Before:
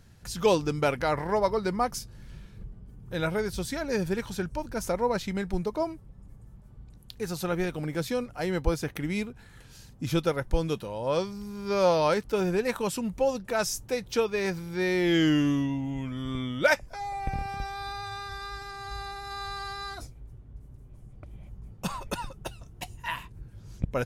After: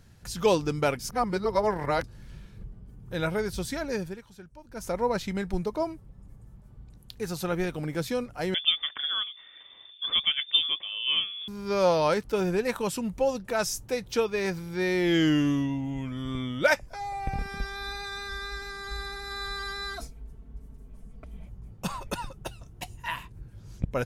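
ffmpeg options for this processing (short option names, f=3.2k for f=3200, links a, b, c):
-filter_complex "[0:a]asettb=1/sr,asplit=3[a][b][c];[a]atrim=end=8.544[d];[b]atrim=start=8.54:end=11.48,asetpts=PTS-STARTPTS,afade=t=in:d=0.004:c=qsin,afade=t=out:st=2.936:d=0.004:c=qsin,lowpass=f=3.1k:t=q:w=0.5098,lowpass=f=3.1k:t=q:w=0.6013,lowpass=f=3.1k:t=q:w=0.9,lowpass=f=3.1k:t=q:w=2.563,afreqshift=-3600[e];[c]atrim=start=11.476[f];[d][e]acrossfade=d=0.004:c1=hsin:c2=qsin[g];[g][f]acrossfade=d=0.004:c1=qsin:c2=hsin,asettb=1/sr,asplit=3[h][i][j];[h]atrim=end=17.384[k];[i]atrim=start=17.38:end=21.46,asetpts=PTS-STARTPTS,afade=t=in:d=0.004:c=qsin,afade=t=out:st=4.076:d=0.004:c=qsin,aecho=1:1:4.5:0.95,atrim=end_sample=179928[l];[j]atrim=start=21.456[m];[k][l]acrossfade=d=0.004:c1=hsin:c2=qsin[n];[n][m]acrossfade=d=0.004:c1=qsin:c2=hsin,asplit=5[o][p][q][r][s];[o]atrim=end=0.992[t];[p]atrim=start=0.988:end=2.042,asetpts=PTS-STARTPTS,areverse[u];[q]atrim=start=2.038:end=4.21,asetpts=PTS-STARTPTS,afade=t=out:st=1.802:d=0.37:silence=0.158489[v];[r]atrim=start=4.21:end=4.64,asetpts=PTS-STARTPTS,volume=-16dB[w];[s]atrim=start=4.64,asetpts=PTS-STARTPTS,afade=t=in:d=0.37:silence=0.158489[x];[t][u]acrossfade=d=0.004:c1=hsin:c2=hsin[y];[v][w][x]concat=n=3:v=0:a=1[z];[y][z]acrossfade=d=0.004:c1=hsin:c2=hsin"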